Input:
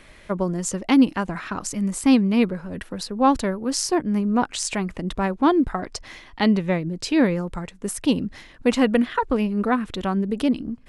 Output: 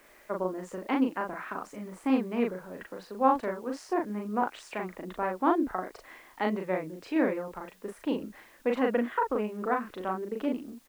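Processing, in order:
three-way crossover with the lows and the highs turned down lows −18 dB, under 290 Hz, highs −22 dB, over 2,300 Hz
in parallel at −9 dB: bit-depth reduction 8 bits, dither triangular
on the sum: double-tracking delay 38 ms −3 dB
level −8.5 dB

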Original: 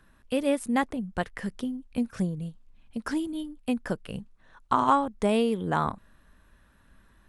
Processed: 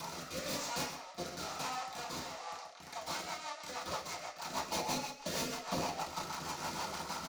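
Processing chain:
linear delta modulator 64 kbit/s, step −26 dBFS
noise gate −19 dBFS, range −33 dB
high-pass filter 1,000 Hz 24 dB per octave
in parallel at +0.5 dB: brickwall limiter −25.5 dBFS, peak gain reduction 10.5 dB
on the sum: downward compressor 6 to 1, threshold −53 dBFS, peak gain reduction 30 dB
formants moved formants −5 semitones
wrap-around overflow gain 55 dB
single-tap delay 128 ms −9.5 dB
convolution reverb RT60 0.55 s, pre-delay 3 ms, DRR −11.5 dB
rotating-speaker cabinet horn 1 Hz, later 6.3 Hz, at 0:02.37
level +14 dB

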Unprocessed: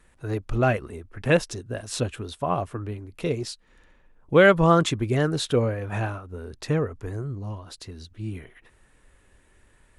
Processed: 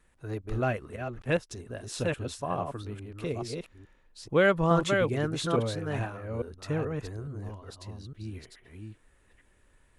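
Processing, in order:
delay that plays each chunk backwards 428 ms, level −4 dB
0:00.96–0:01.51: expander for the loud parts 1.5 to 1, over −37 dBFS
level −7 dB

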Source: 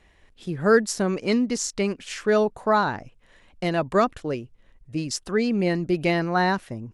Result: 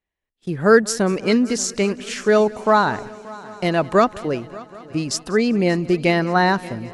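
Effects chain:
noise gate −44 dBFS, range −31 dB
low-shelf EQ 77 Hz −6 dB
echo machine with several playback heads 193 ms, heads first and third, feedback 62%, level −21.5 dB
level +5 dB

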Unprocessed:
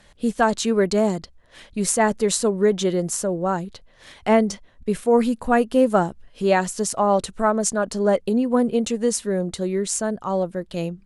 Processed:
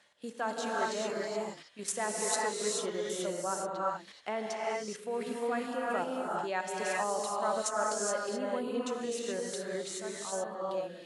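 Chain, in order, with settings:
output level in coarse steps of 11 dB
meter weighting curve A
reverb whose tail is shaped and stops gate 450 ms rising, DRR −3.5 dB
level −9 dB

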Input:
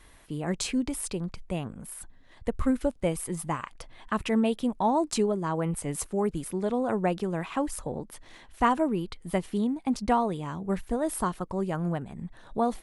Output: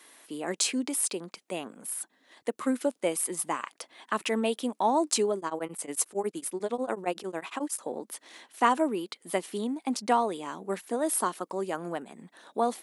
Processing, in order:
high-pass filter 260 Hz 24 dB per octave
high-shelf EQ 3,500 Hz +7.5 dB
0:05.37–0:07.82: tremolo along a rectified sine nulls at 11 Hz

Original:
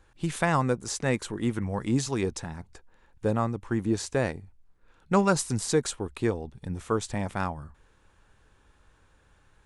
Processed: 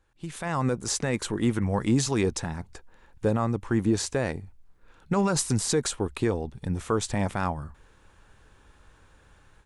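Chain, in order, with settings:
brickwall limiter −19 dBFS, peak gain reduction 11 dB
automatic gain control gain up to 14 dB
level −9 dB

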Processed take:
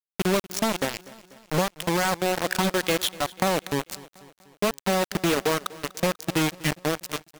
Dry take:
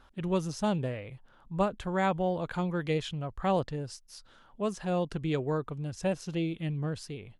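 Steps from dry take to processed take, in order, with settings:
high-pass filter 170 Hz 24 dB per octave
reverb reduction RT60 1.9 s
dynamic equaliser 3,200 Hz, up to +3 dB, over −47 dBFS, Q 0.87
in parallel at +2 dB: brickwall limiter −24.5 dBFS, peak gain reduction 10.5 dB
on the sum: downward compressor 5 to 1, threshold −27 dBFS, peak gain reduction 8.5 dB
bit reduction 5 bits
pitch vibrato 0.44 Hz 98 cents
on a send: repeating echo 245 ms, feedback 56%, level −20 dB
on the sum: level +6.5 dB

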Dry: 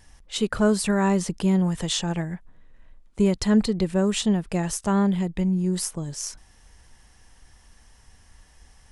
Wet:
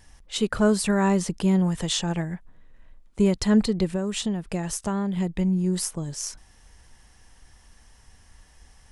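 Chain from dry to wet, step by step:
0:03.93–0:05.17: downward compressor 4 to 1, threshold −24 dBFS, peak gain reduction 6.5 dB

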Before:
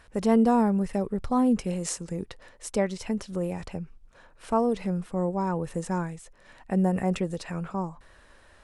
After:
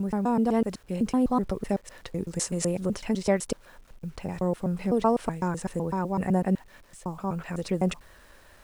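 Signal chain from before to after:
slices reordered back to front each 126 ms, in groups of 7
speech leveller within 4 dB 2 s
bit reduction 10 bits

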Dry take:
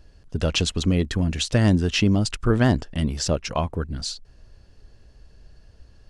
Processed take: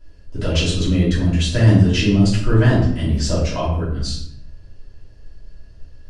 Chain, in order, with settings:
rectangular room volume 150 cubic metres, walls mixed, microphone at 2.9 metres
level −8 dB

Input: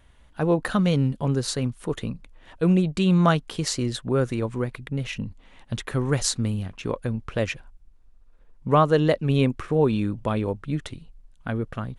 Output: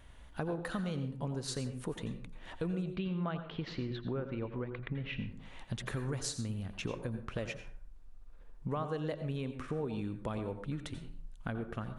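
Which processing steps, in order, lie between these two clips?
0:02.92–0:05.27: inverse Chebyshev low-pass filter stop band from 9,700 Hz, stop band 60 dB
downward compressor 5 to 1, threshold −36 dBFS, peak gain reduction 20 dB
dense smooth reverb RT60 0.52 s, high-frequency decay 0.55×, pre-delay 75 ms, DRR 8.5 dB

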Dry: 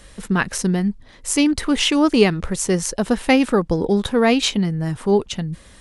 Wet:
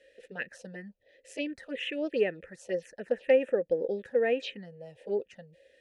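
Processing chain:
formant filter e
phaser swept by the level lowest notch 150 Hz, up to 4,600 Hz, full sweep at −23.5 dBFS

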